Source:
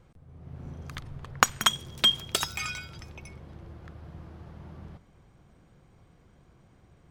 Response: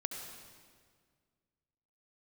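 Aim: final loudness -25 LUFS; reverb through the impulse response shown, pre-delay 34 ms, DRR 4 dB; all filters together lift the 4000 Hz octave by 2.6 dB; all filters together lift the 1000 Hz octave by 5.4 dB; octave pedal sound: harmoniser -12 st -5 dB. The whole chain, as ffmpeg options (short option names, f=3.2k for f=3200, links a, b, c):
-filter_complex "[0:a]equalizer=f=1k:t=o:g=6.5,equalizer=f=4k:t=o:g=3,asplit=2[a][b];[1:a]atrim=start_sample=2205,adelay=34[c];[b][c]afir=irnorm=-1:irlink=0,volume=-4.5dB[d];[a][d]amix=inputs=2:normalize=0,asplit=2[e][f];[f]asetrate=22050,aresample=44100,atempo=2,volume=-5dB[g];[e][g]amix=inputs=2:normalize=0,volume=-3.5dB"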